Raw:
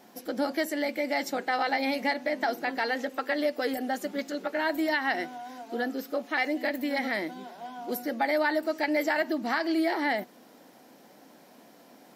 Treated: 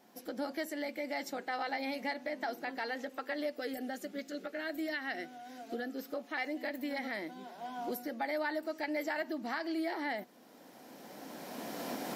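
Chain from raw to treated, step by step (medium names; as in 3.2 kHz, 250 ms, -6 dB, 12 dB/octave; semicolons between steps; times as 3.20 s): recorder AGC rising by 14 dB/s; 3.56–5.96 s: peaking EQ 950 Hz -14 dB 0.34 oct; trim -9 dB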